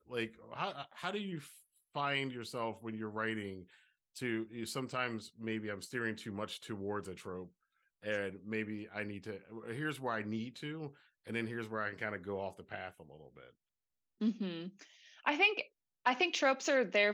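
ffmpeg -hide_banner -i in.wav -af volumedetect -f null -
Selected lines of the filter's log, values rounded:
mean_volume: -39.0 dB
max_volume: -16.0 dB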